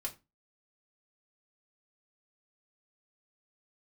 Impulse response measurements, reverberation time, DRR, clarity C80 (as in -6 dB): 0.25 s, -0.5 dB, 22.5 dB